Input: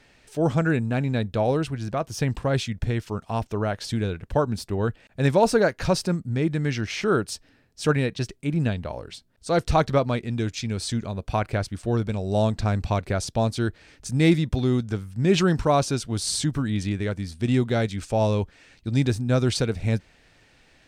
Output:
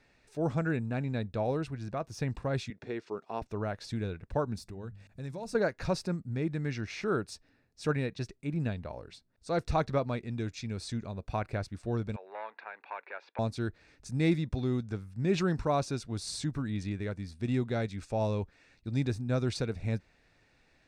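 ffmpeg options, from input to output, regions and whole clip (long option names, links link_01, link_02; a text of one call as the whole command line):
ffmpeg -i in.wav -filter_complex "[0:a]asettb=1/sr,asplit=3[link_01][link_02][link_03];[link_01]atrim=end=2.704[link_04];[link_02]atrim=start=2.7:end=3.42,asetpts=PTS-STARTPTS,afade=type=in:duration=0.004:curve=qsin,afade=type=out:start_time=0.716:duration=0.004:curve=qsin,highpass=280,lowpass=5700,equalizer=frequency=390:width_type=o:width=0.48:gain=7.5[link_05];[link_03]atrim=start=3.416[link_06];[link_04][link_05]acrossfade=duration=0.004:curve1=hsin:curve2=qsin[link_07];[link_07][link_06]acrossfade=duration=0.004:curve1=qsin:curve2=hsin,asettb=1/sr,asplit=3[link_08][link_09][link_10];[link_08]atrim=end=4.574[link_11];[link_09]atrim=start=4.57:end=5.55,asetpts=PTS-STARTPTS,afade=type=in:duration=0.004:curve=qsin,afade=type=out:start_time=0.976:duration=0.004:curve=qsin,bass=frequency=250:gain=7,treble=frequency=4000:gain=9,bandreject=frequency=50:width_type=h:width=6,bandreject=frequency=100:width_type=h:width=6,bandreject=frequency=150:width_type=h:width=6,bandreject=frequency=200:width_type=h:width=6,acompressor=threshold=-35dB:ratio=2.5:attack=3.2:release=140:knee=1:detection=peak[link_12];[link_10]atrim=start=5.546[link_13];[link_11][link_12]acrossfade=duration=0.004:curve1=hsin:curve2=qsin[link_14];[link_14][link_13]acrossfade=duration=0.004:curve1=qsin:curve2=hsin,asettb=1/sr,asplit=3[link_15][link_16][link_17];[link_15]atrim=end=12.164[link_18];[link_16]atrim=start=12.16:end=13.39,asetpts=PTS-STARTPTS,afade=type=in:duration=0.004:curve=qsin,afade=type=out:start_time=1.226:duration=0.004:curve=qsin,acompressor=threshold=-31dB:ratio=1.5:attack=3.2:release=140:knee=1:detection=peak,asoftclip=type=hard:threshold=-23.5dB,highpass=frequency=490:width=0.5412,highpass=frequency=490:width=1.3066,equalizer=frequency=650:width_type=q:width=4:gain=-6,equalizer=frequency=920:width_type=q:width=4:gain=8,equalizer=frequency=1600:width_type=q:width=4:gain=8,equalizer=frequency=2400:width_type=q:width=4:gain=6,lowpass=frequency=3000:width=0.5412,lowpass=frequency=3000:width=1.3066[link_19];[link_17]atrim=start=13.386[link_20];[link_18][link_19]acrossfade=duration=0.004:curve1=hsin:curve2=qsin[link_21];[link_21][link_20]acrossfade=duration=0.004:curve1=qsin:curve2=hsin,highshelf=frequency=8400:gain=-10.5,bandreject=frequency=3100:width=7.2,volume=-8.5dB" out.wav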